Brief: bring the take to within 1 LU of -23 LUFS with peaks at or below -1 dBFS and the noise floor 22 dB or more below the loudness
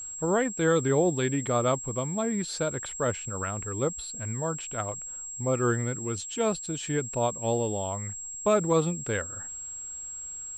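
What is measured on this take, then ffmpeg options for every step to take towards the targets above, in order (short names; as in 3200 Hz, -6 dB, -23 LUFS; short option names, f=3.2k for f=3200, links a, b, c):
steady tone 7600 Hz; tone level -36 dBFS; loudness -28.5 LUFS; peak -13.0 dBFS; loudness target -23.0 LUFS
-> -af "bandreject=f=7.6k:w=30"
-af "volume=5.5dB"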